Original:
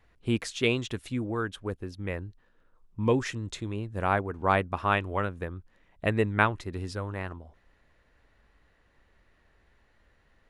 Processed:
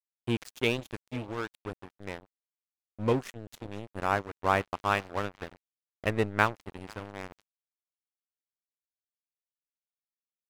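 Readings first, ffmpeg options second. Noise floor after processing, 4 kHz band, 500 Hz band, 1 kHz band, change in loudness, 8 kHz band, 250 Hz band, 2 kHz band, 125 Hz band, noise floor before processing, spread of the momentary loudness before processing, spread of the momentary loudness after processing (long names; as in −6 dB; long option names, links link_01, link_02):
below −85 dBFS, −2.0 dB, −2.5 dB, −1.5 dB, −1.5 dB, −4.5 dB, −4.0 dB, −2.0 dB, −5.5 dB, −66 dBFS, 12 LU, 16 LU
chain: -af "aecho=1:1:489|978|1467:0.119|0.0475|0.019,aeval=exprs='sgn(val(0))*max(abs(val(0))-0.0224,0)':channel_layout=same"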